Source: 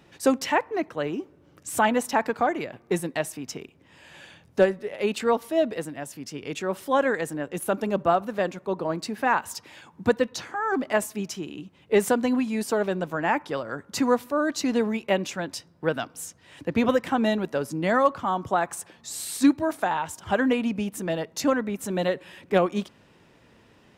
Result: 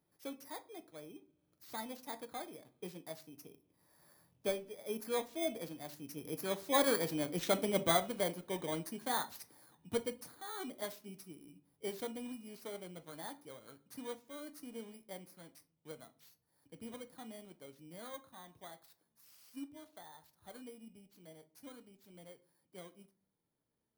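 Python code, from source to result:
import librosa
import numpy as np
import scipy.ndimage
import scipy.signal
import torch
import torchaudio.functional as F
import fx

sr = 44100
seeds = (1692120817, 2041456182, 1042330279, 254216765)

y = fx.bit_reversed(x, sr, seeds[0], block=16)
y = fx.doppler_pass(y, sr, speed_mps=10, closest_m=9.3, pass_at_s=7.3)
y = fx.room_shoebox(y, sr, seeds[1], volume_m3=180.0, walls='furnished', distance_m=0.48)
y = y * 10.0 ** (-6.5 / 20.0)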